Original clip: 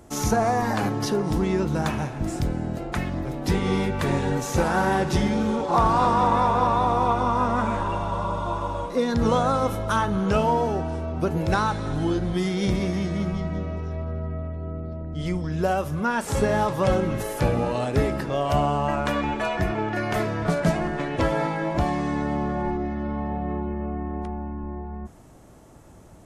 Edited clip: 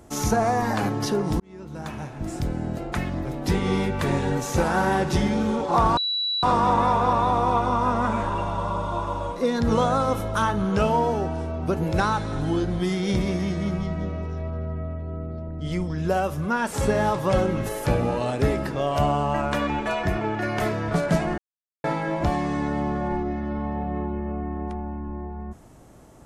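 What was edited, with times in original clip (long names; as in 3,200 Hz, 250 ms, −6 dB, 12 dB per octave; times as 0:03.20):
0:01.40–0:02.67: fade in
0:05.97: insert tone 3,930 Hz −22.5 dBFS 0.46 s
0:20.92–0:21.38: silence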